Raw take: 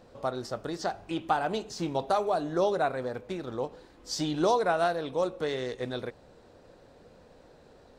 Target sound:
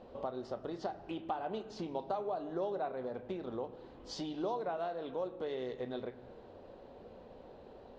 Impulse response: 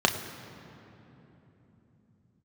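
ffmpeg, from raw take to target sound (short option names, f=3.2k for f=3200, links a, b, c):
-filter_complex "[0:a]lowpass=3k,acompressor=threshold=-41dB:ratio=3,asplit=2[a][b];[1:a]atrim=start_sample=2205,afade=t=out:st=0.43:d=0.01,atrim=end_sample=19404[c];[b][c]afir=irnorm=-1:irlink=0,volume=-19dB[d];[a][d]amix=inputs=2:normalize=0,volume=-1dB"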